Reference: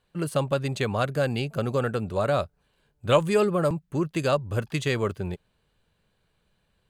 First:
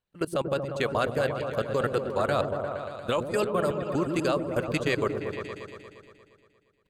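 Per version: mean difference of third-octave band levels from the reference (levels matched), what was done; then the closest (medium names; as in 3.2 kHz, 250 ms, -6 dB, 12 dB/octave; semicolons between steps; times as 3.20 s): 6.5 dB: harmonic-percussive split percussive +9 dB; level held to a coarse grid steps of 21 dB; delay with an opening low-pass 117 ms, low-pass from 400 Hz, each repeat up 1 oct, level -3 dB; trim -4 dB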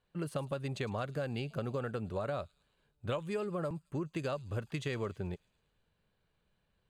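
2.5 dB: treble shelf 5.8 kHz -7.5 dB; compression 6:1, threshold -26 dBFS, peak gain reduction 12 dB; feedback echo behind a high-pass 108 ms, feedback 57%, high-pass 5 kHz, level -13 dB; trim -6.5 dB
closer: second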